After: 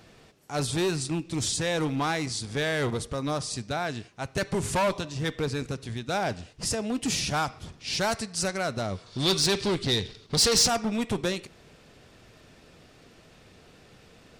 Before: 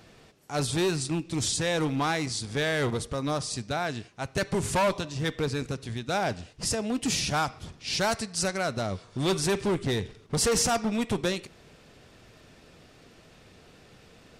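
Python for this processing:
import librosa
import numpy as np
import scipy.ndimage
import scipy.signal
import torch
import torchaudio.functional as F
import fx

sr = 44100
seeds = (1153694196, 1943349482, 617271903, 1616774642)

y = fx.peak_eq(x, sr, hz=4300.0, db=13.5, octaves=1.0, at=(9.06, 10.68))
y = 10.0 ** (-14.0 / 20.0) * np.tanh(y / 10.0 ** (-14.0 / 20.0))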